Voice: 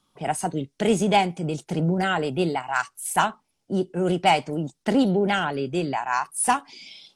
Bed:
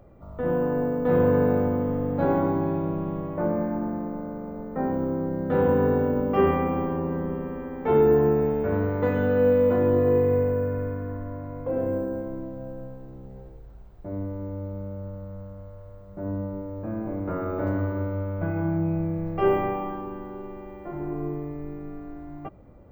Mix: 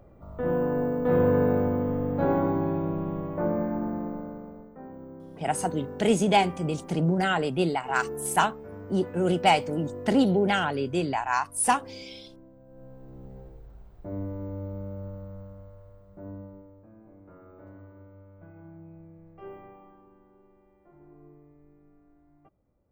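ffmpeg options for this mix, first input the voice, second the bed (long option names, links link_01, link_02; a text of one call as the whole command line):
ffmpeg -i stem1.wav -i stem2.wav -filter_complex "[0:a]adelay=5200,volume=-1.5dB[link_01];[1:a]volume=13.5dB,afade=type=out:start_time=4.08:duration=0.69:silence=0.16788,afade=type=in:start_time=12.67:duration=0.56:silence=0.177828,afade=type=out:start_time=15.06:duration=1.82:silence=0.1[link_02];[link_01][link_02]amix=inputs=2:normalize=0" out.wav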